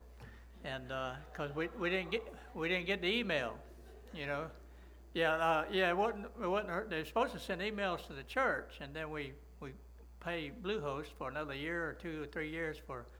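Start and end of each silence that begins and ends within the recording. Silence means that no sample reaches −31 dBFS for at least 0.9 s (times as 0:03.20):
0:09.21–0:10.27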